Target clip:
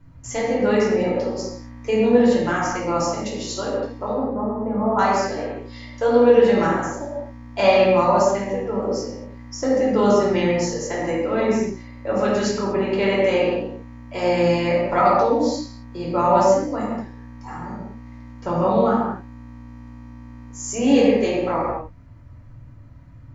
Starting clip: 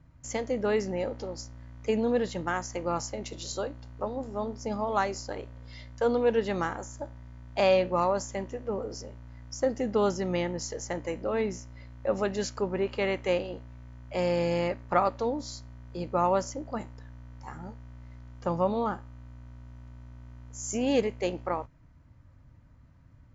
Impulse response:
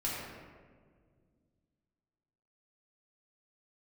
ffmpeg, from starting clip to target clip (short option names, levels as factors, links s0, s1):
-filter_complex "[0:a]asettb=1/sr,asplit=3[s0][s1][s2];[s0]atrim=end=4.134[s3];[s1]atrim=start=4.13:end=4.99,asetpts=PTS-STARTPTS,afade=t=in:d=0.004:c=qsin,afade=t=out:st=0.856:d=0.004:c=qsin,lowpass=f=1600:w=0.5412,lowpass=f=1600:w=1.3066[s4];[s2]atrim=start=4.986[s5];[s3][s4]acrossfade=d=0.004:c1=hsin:c2=qsin[s6];[s6][s5]acrossfade=d=0.004:c1=qsin:c2=hsin[s7];[1:a]atrim=start_sample=2205,afade=t=out:st=0.31:d=0.01,atrim=end_sample=14112[s8];[s7][s8]afir=irnorm=-1:irlink=0,volume=1.78"